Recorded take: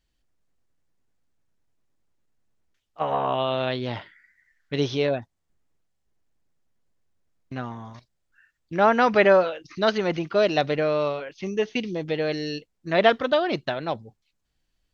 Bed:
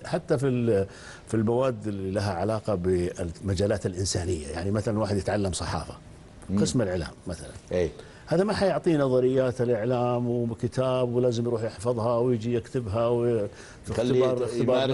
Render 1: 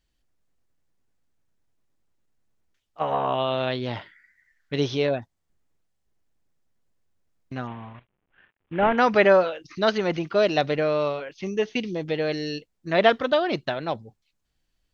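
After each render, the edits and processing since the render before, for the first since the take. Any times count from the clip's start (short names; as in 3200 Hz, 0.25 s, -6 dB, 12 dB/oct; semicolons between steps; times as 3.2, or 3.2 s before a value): 7.67–8.98 CVSD 16 kbps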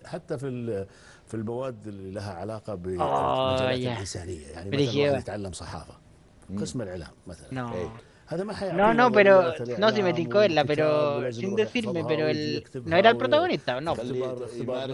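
add bed -7.5 dB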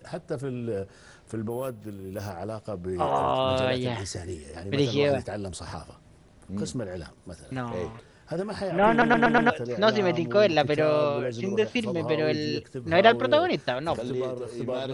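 1.5–2.3 careless resampling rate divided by 4×, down none, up hold; 8.9 stutter in place 0.12 s, 5 plays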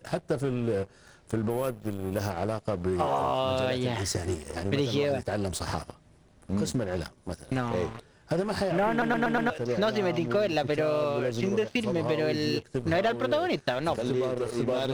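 sample leveller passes 2; compressor 6:1, threshold -24 dBFS, peak gain reduction 15 dB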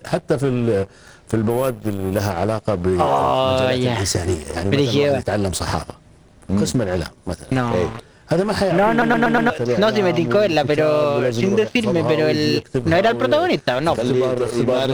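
gain +10 dB; limiter -3 dBFS, peak gain reduction 1.5 dB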